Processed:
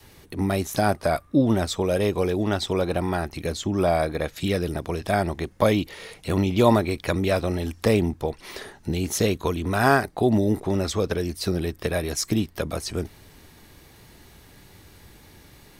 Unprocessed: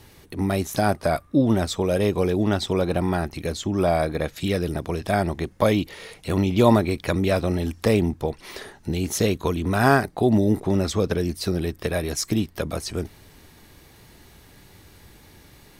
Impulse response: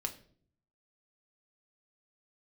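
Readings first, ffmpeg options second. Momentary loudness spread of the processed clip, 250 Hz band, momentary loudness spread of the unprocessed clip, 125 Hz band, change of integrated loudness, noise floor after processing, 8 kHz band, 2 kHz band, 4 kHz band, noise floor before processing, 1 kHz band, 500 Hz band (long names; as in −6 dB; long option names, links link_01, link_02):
9 LU, −1.5 dB, 10 LU, −1.5 dB, −1.0 dB, −52 dBFS, 0.0 dB, 0.0 dB, 0.0 dB, −51 dBFS, 0.0 dB, −0.5 dB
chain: -af "adynamicequalizer=threshold=0.0251:dfrequency=170:dqfactor=0.71:tfrequency=170:tqfactor=0.71:attack=5:release=100:ratio=0.375:range=2.5:mode=cutabove:tftype=bell"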